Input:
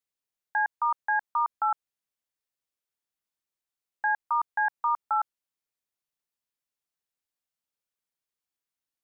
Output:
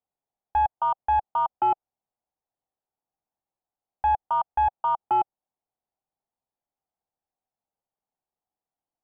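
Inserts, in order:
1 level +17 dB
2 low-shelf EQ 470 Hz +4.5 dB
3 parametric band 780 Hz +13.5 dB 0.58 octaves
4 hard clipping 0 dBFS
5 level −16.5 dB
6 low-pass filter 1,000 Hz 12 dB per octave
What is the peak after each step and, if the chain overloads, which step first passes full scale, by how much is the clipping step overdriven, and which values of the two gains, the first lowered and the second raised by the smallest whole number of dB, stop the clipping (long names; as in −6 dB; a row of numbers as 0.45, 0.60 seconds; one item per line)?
−1.0, −0.5, +7.5, 0.0, −16.5, −16.0 dBFS
step 3, 7.5 dB
step 1 +9 dB, step 5 −8.5 dB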